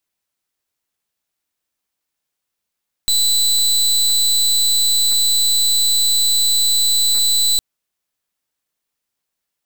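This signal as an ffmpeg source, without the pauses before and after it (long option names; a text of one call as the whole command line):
ffmpeg -f lavfi -i "aevalsrc='0.178*(2*lt(mod(3990*t,1),0.27)-1)':duration=4.51:sample_rate=44100" out.wav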